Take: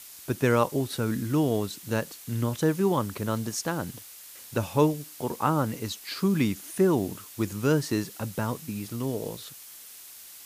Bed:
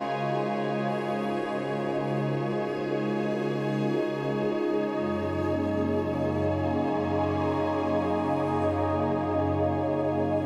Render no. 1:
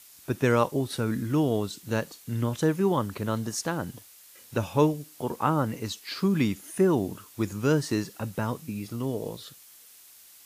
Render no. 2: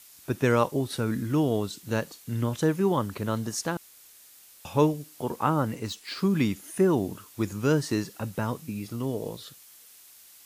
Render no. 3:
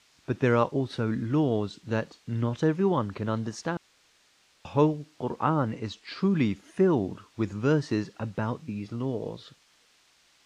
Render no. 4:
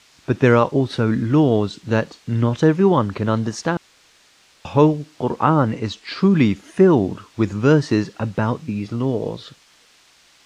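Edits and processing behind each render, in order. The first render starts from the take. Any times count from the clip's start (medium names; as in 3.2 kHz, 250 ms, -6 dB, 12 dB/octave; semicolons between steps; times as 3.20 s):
noise print and reduce 6 dB
3.77–4.65 s: room tone; 5.74–6.19 s: decimation joined by straight lines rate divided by 2×
distance through air 140 m
trim +9.5 dB; peak limiter -2 dBFS, peak gain reduction 2.5 dB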